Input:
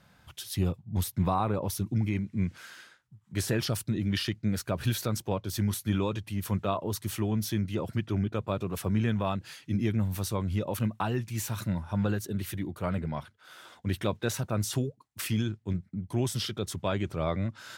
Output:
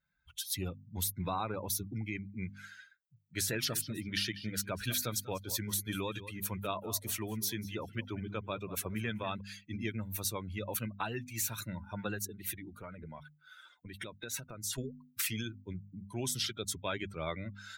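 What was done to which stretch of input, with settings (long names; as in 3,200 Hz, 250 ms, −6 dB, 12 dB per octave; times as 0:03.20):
0:03.48–0:09.41: repeating echo 194 ms, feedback 33%, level −13 dB
0:12.28–0:14.78: downward compressor 5 to 1, threshold −33 dBFS
whole clip: spectral dynamics exaggerated over time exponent 2; mains-hum notches 50/100/150/200/250 Hz; every bin compressed towards the loudest bin 2 to 1; level −2 dB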